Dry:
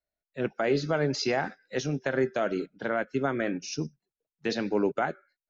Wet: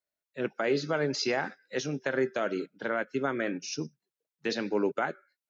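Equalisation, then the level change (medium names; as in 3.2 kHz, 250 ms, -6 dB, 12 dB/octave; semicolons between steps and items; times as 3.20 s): high-pass 240 Hz 6 dB/octave; peaking EQ 710 Hz -4.5 dB 0.34 oct; 0.0 dB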